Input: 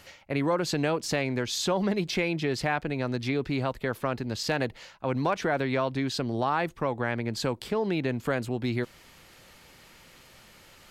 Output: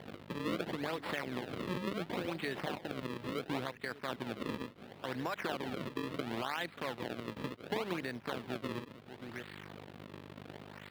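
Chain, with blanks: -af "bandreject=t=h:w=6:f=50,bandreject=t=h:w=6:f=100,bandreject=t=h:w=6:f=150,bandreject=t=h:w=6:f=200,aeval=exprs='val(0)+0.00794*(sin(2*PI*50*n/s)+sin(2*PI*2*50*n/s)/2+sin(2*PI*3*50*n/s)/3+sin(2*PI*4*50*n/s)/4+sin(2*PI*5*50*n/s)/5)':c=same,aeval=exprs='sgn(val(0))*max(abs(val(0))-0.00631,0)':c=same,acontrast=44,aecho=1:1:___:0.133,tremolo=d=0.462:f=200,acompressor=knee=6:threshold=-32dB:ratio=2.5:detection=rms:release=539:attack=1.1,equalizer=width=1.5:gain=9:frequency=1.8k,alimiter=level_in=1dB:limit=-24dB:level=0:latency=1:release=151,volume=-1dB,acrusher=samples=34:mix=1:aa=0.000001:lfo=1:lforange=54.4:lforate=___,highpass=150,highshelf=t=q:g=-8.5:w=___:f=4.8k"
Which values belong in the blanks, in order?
582, 0.71, 1.5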